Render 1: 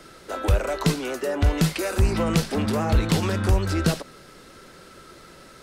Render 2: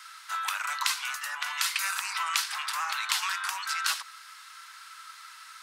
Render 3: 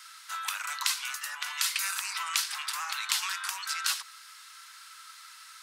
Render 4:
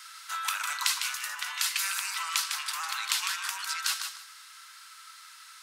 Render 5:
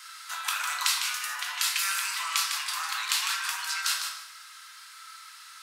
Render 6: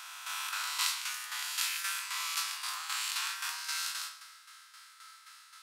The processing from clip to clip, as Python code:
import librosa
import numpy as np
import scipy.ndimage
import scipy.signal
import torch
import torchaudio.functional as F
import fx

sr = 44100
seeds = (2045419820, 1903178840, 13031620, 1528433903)

y1 = scipy.signal.sosfilt(scipy.signal.butter(8, 990.0, 'highpass', fs=sr, output='sos'), x)
y1 = y1 * librosa.db_to_amplitude(2.5)
y2 = fx.high_shelf(y1, sr, hz=2400.0, db=8.5)
y2 = y2 * librosa.db_to_amplitude(-6.5)
y3 = fx.rider(y2, sr, range_db=3, speed_s=2.0)
y3 = fx.echo_feedback(y3, sr, ms=153, feedback_pct=21, wet_db=-7)
y4 = fx.room_shoebox(y3, sr, seeds[0], volume_m3=190.0, walls='mixed', distance_m=0.89)
y5 = fx.spec_swells(y4, sr, rise_s=1.67)
y5 = fx.tremolo_shape(y5, sr, shape='saw_down', hz=3.8, depth_pct=60)
y5 = y5 * librosa.db_to_amplitude(-7.5)